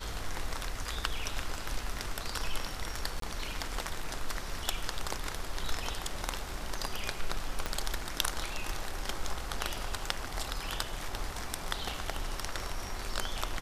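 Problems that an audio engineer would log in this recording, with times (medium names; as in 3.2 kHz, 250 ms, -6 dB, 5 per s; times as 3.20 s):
3.20–3.22 s: dropout 23 ms
7.66 s: pop -17 dBFS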